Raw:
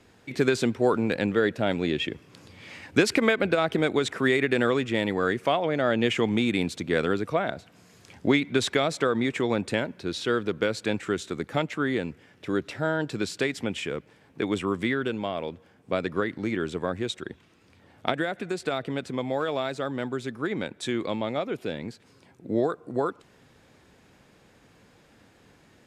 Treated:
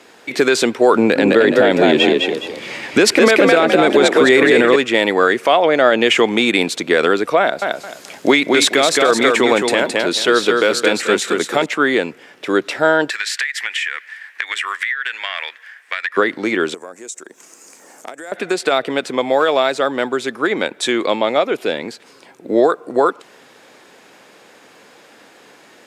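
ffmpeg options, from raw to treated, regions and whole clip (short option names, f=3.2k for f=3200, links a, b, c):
-filter_complex "[0:a]asettb=1/sr,asplit=3[a][b][c];[a]atrim=end=0.954[d];[b]atrim=start=0.95:end=4.76,asetpts=PTS-STARTPTS,afade=t=in:d=0.004:c=qsin,afade=t=out:st=3.806:d=0.004:c=qsin,lowshelf=f=320:g=9,asplit=5[e][f][g][h][i];[f]adelay=208,afreqshift=48,volume=-4dB[j];[g]adelay=416,afreqshift=96,volume=-13.9dB[k];[h]adelay=624,afreqshift=144,volume=-23.8dB[l];[i]adelay=832,afreqshift=192,volume=-33.7dB[m];[e][j][k][l][m]amix=inputs=5:normalize=0,atrim=end_sample=168021[n];[c]atrim=start=4.756[o];[d][n]acrossfade=d=0.004:c1=hsin:c2=qsin[p];[p][o]acrossfade=d=0.004:c1=qsin:c2=hsin,asettb=1/sr,asplit=3[q][r][s];[q]atrim=end=7.404[t];[r]atrim=start=7.4:end=11.66,asetpts=PTS-STARTPTS,afade=t=in:d=0.004:c=qsin,afade=t=out:st=4.256:d=0.004:c=qsin,highshelf=f=8.6k:g=6.5,aecho=1:1:217|434|651:0.596|0.143|0.0343,atrim=end_sample=187866[u];[s]atrim=start=11.656[v];[t][u]acrossfade=d=0.004:c1=hsin:c2=qsin[w];[w][v]acrossfade=d=0.004:c1=qsin:c2=hsin,asettb=1/sr,asplit=3[x][y][z];[x]atrim=end=13.104[aa];[y]atrim=start=13.1:end=16.17,asetpts=PTS-STARTPTS,afade=t=in:d=0.004:c=qsin,afade=t=out:st=3.066:d=0.004:c=qsin,highpass=f=1.8k:t=q:w=7.5,acompressor=threshold=-31dB:ratio=16:attack=3.2:release=140:knee=1:detection=peak[ab];[z]atrim=start=16.166[ac];[aa][ab]acrossfade=d=0.004:c1=hsin:c2=qsin[ad];[ad][ac]acrossfade=d=0.004:c1=qsin:c2=hsin,asettb=1/sr,asplit=3[ae][af][ag];[ae]atrim=end=16.744[ah];[af]atrim=start=16.74:end=18.32,asetpts=PTS-STARTPTS,afade=t=in:d=0.004:c=qsin,afade=t=out:st=1.576:d=0.004:c=qsin,highshelf=f=5k:t=q:w=3:g=12,acompressor=threshold=-47dB:ratio=3:attack=3.2:release=140:knee=1:detection=peak,highpass=190[ai];[ag]atrim=start=18.316[aj];[ah][ai]acrossfade=d=0.004:c1=hsin:c2=qsin[ak];[ak][aj]acrossfade=d=0.004:c1=qsin:c2=hsin,highpass=380,alimiter=level_in=15.5dB:limit=-1dB:release=50:level=0:latency=1,volume=-1dB"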